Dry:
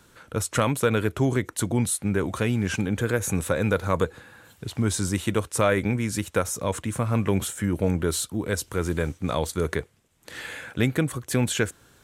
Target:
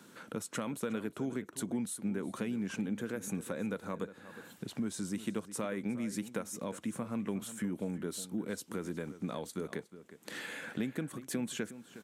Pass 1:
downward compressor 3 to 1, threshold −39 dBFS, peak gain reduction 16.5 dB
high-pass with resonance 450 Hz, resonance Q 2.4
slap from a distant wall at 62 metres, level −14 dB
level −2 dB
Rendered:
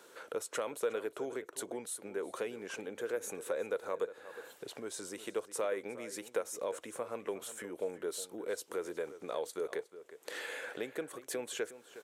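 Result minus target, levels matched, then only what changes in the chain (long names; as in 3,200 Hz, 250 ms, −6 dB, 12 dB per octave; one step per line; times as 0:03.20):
250 Hz band −10.0 dB
change: high-pass with resonance 210 Hz, resonance Q 2.4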